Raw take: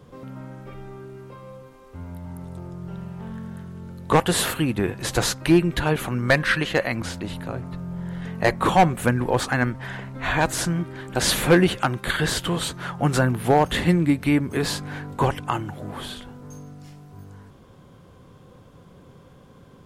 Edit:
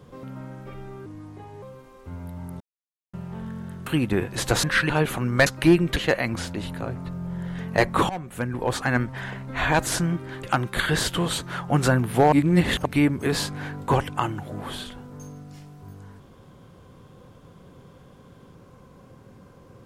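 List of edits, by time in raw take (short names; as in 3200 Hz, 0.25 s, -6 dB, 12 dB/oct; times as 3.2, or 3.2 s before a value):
1.06–1.5 speed 78%
2.48–3.01 mute
3.74–4.53 cut
5.3–5.8 swap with 6.37–6.63
8.76–9.69 fade in, from -20.5 dB
11.1–11.74 cut
13.63–14.16 reverse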